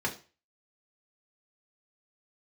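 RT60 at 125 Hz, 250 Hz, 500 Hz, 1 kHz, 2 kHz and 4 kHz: 0.40 s, 0.30 s, 0.35 s, 0.35 s, 0.35 s, 0.35 s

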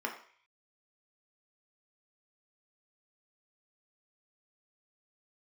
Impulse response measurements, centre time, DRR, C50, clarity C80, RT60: 20 ms, 0.5 dB, 8.5 dB, 11.5 dB, 0.50 s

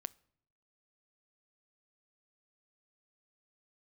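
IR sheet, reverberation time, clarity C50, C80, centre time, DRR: 0.70 s, 24.5 dB, 28.5 dB, 1 ms, 19.5 dB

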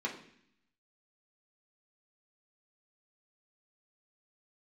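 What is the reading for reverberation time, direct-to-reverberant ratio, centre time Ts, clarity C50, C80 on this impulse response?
0.65 s, -3.5 dB, 21 ms, 8.5 dB, 12.0 dB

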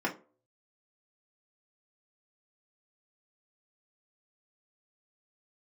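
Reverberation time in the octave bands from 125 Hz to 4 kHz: 0.50 s, 0.40 s, 0.45 s, 0.30 s, 0.25 s, 0.20 s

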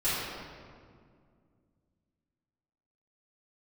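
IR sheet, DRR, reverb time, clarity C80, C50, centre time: -15.0 dB, 2.1 s, -0.5 dB, -3.5 dB, 131 ms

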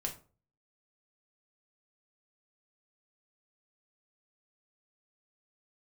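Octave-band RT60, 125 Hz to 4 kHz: 0.55 s, 0.45 s, 0.40 s, 0.35 s, 0.25 s, 0.25 s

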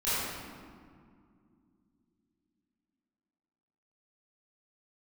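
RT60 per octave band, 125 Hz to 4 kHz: 3.5 s, 4.1 s, 2.5 s, 2.1 s, 1.6 s, 1.1 s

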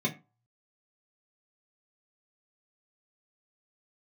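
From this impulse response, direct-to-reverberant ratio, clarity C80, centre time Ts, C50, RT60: -3.5 dB, 21.0 dB, 12 ms, 15.5 dB, 0.30 s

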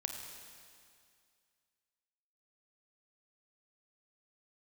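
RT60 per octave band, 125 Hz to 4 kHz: 2.2 s, 2.2 s, 2.2 s, 2.2 s, 2.2 s, 2.2 s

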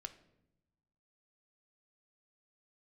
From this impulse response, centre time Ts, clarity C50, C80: 7 ms, 14.0 dB, 17.0 dB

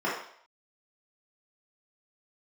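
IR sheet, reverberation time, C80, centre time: 0.60 s, 7.0 dB, 46 ms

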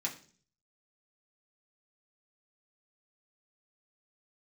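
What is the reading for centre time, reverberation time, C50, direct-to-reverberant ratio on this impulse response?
15 ms, 0.45 s, 12.0 dB, -3.5 dB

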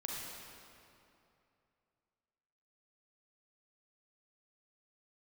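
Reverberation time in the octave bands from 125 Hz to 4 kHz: 3.0 s, 2.7 s, 2.8 s, 2.7 s, 2.3 s, 1.9 s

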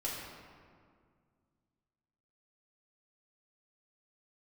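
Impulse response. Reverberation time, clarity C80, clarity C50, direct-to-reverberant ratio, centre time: 2.0 s, 2.0 dB, 0.0 dB, -7.0 dB, 97 ms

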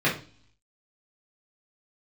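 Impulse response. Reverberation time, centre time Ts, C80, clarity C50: 0.40 s, 25 ms, 15.0 dB, 8.5 dB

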